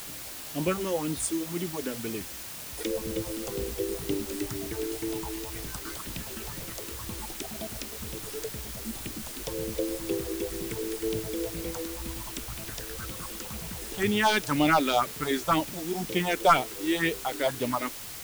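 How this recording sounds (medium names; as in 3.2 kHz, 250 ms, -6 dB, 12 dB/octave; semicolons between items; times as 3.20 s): phasing stages 4, 2 Hz, lowest notch 120–1500 Hz; a quantiser's noise floor 8-bit, dither triangular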